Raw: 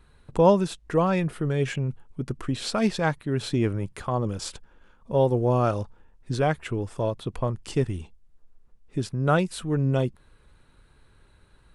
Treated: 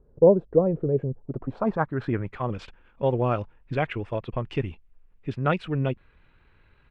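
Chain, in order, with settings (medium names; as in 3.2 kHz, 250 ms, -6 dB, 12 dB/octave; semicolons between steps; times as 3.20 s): low-pass sweep 500 Hz -> 2.5 kHz, 1.85–4.12 s; tempo 1.7×; trim -2 dB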